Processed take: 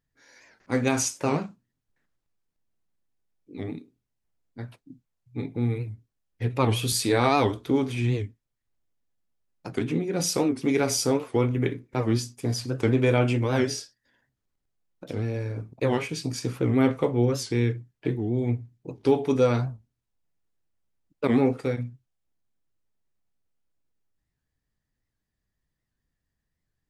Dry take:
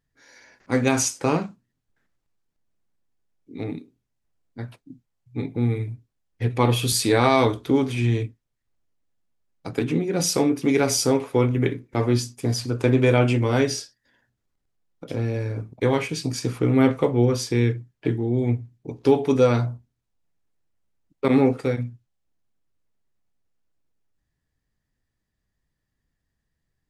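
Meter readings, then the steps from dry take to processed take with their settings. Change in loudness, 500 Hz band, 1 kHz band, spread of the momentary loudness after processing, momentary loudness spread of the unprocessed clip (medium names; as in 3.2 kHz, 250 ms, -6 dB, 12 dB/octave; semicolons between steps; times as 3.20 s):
-3.5 dB, -3.5 dB, -3.0 dB, 14 LU, 14 LU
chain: warped record 78 rpm, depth 160 cents; trim -3.5 dB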